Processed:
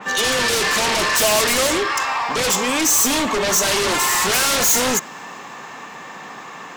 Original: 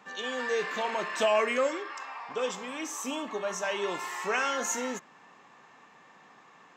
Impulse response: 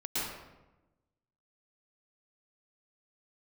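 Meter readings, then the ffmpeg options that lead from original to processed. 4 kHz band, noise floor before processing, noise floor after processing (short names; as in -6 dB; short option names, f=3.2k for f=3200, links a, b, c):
+19.0 dB, -57 dBFS, -36 dBFS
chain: -filter_complex "[0:a]highshelf=f=9.9k:g=12,asplit=2[a][b];[b]aeval=exprs='0.178*sin(PI/2*8.91*val(0)/0.178)':c=same,volume=-9dB[c];[a][c]amix=inputs=2:normalize=0,adynamicequalizer=threshold=0.01:dfrequency=3800:dqfactor=0.7:tfrequency=3800:tqfactor=0.7:attack=5:release=100:ratio=0.375:range=2.5:mode=boostabove:tftype=highshelf,volume=5dB"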